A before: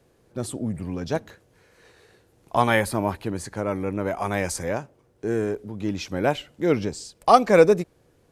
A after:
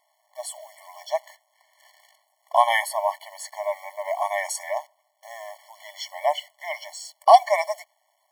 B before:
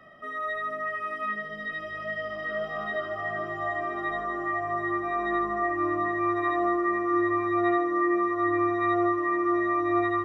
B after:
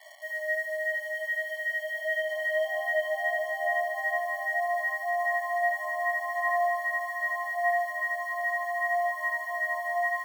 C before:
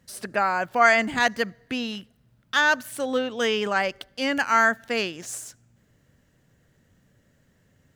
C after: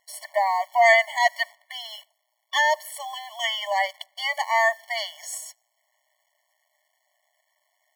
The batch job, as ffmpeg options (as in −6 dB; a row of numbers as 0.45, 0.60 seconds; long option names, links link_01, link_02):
-af "acrusher=bits=9:dc=4:mix=0:aa=0.000001,afftfilt=real='re*eq(mod(floor(b*sr/1024/580),2),1)':imag='im*eq(mod(floor(b*sr/1024/580),2),1)':win_size=1024:overlap=0.75,volume=4dB"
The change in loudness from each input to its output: 0.0, −1.0, +0.5 LU